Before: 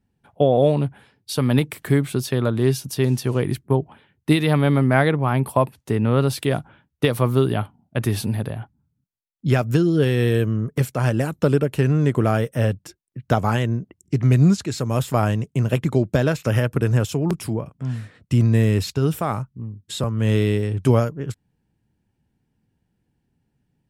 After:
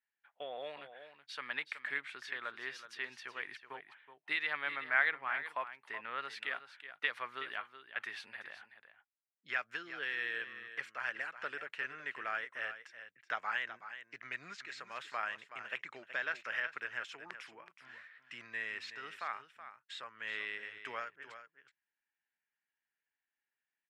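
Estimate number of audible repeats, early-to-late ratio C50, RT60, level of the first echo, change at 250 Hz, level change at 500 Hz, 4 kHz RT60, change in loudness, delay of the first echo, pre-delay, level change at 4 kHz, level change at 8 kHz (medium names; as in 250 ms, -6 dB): 1, no reverb, no reverb, -11.5 dB, -39.0 dB, -28.0 dB, no reverb, -18.5 dB, 374 ms, no reverb, -13.0 dB, under -25 dB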